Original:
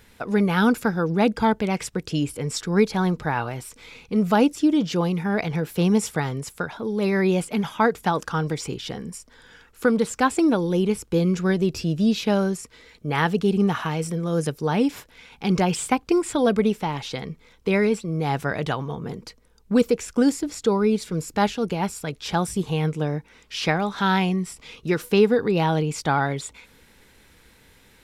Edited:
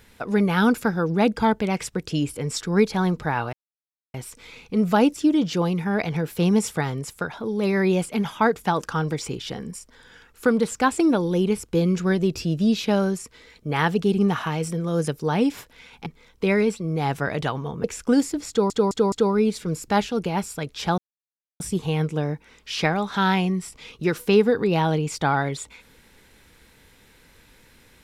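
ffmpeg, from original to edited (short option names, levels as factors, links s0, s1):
-filter_complex "[0:a]asplit=8[s0][s1][s2][s3][s4][s5][s6][s7];[s0]atrim=end=3.53,asetpts=PTS-STARTPTS,afade=t=out:st=3.526:d=0.004:c=hsin,apad=pad_dur=0.61[s8];[s1]atrim=start=3.53:end=15.452,asetpts=PTS-STARTPTS,afade=t=in:d=0.004:c=hsin[s9];[s2]atrim=start=17.298:end=19.082[s10];[s3]atrim=start=19.928:end=20.792[s11];[s4]atrim=start=20.578:end=20.792[s12];[s5]atrim=start=20.578:end=20.792[s13];[s6]atrim=start=20.578:end=22.44,asetpts=PTS-STARTPTS,afade=t=out:st=1.858:d=0.004:c=hsin,apad=pad_dur=0.62[s14];[s7]atrim=start=22.44,asetpts=PTS-STARTPTS,afade=t=in:d=0.004:c=hsin[s15];[s8][s9]concat=n=2:v=0:a=1[s16];[s16][s10]acrossfade=d=0.004:c1=hsin:c2=hsin[s17];[s17][s11]acrossfade=d=0.004:c1=hsin:c2=hsin[s18];[s18][s12]acrossfade=d=0.004:c1=hsin:c2=hsin[s19];[s19][s13]acrossfade=d=0.004:c1=hsin:c2=hsin[s20];[s14][s15]concat=n=2:v=0:a=1[s21];[s20][s21]acrossfade=d=0.004:c1=hsin:c2=hsin"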